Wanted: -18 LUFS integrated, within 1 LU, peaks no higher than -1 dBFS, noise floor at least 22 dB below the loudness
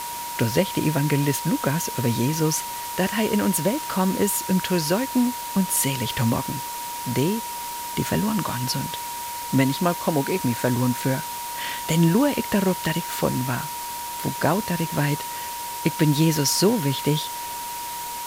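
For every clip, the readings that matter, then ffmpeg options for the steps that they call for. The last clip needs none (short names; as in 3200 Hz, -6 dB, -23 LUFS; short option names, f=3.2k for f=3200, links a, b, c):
steady tone 950 Hz; tone level -31 dBFS; noise floor -32 dBFS; noise floor target -46 dBFS; loudness -23.5 LUFS; peak -6.5 dBFS; loudness target -18.0 LUFS
-> -af "bandreject=f=950:w=30"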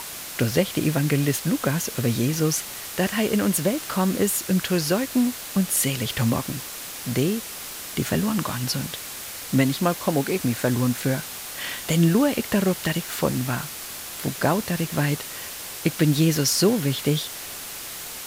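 steady tone none; noise floor -36 dBFS; noise floor target -46 dBFS
-> -af "afftdn=nr=10:nf=-36"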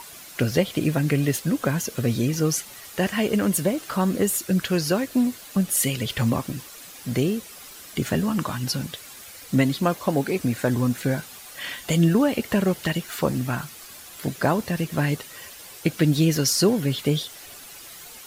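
noise floor -43 dBFS; noise floor target -46 dBFS
-> -af "afftdn=nr=6:nf=-43"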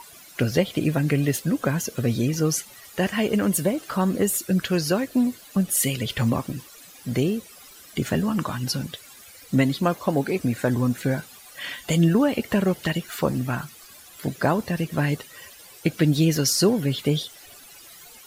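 noise floor -47 dBFS; loudness -24.0 LUFS; peak -7.5 dBFS; loudness target -18.0 LUFS
-> -af "volume=6dB"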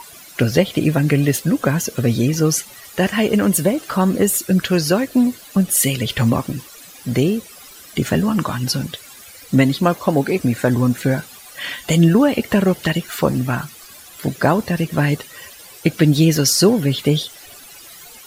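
loudness -18.0 LUFS; peak -1.5 dBFS; noise floor -41 dBFS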